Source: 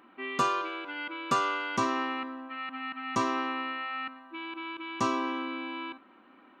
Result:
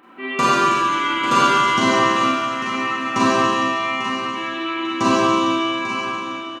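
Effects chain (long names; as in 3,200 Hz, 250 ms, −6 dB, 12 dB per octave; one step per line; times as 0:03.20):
repeating echo 845 ms, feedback 28%, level −10.5 dB
four-comb reverb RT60 2.3 s, combs from 31 ms, DRR −8 dB
level +6 dB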